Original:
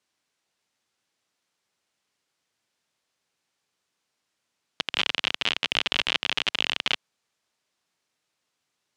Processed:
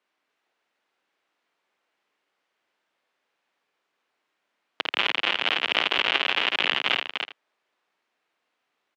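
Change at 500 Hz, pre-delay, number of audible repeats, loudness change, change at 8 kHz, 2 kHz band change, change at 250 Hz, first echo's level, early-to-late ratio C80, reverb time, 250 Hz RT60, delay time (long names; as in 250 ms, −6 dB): +5.5 dB, no reverb audible, 3, +2.0 dB, can't be measured, +4.0 dB, +2.0 dB, −4.5 dB, no reverb audible, no reverb audible, no reverb audible, 52 ms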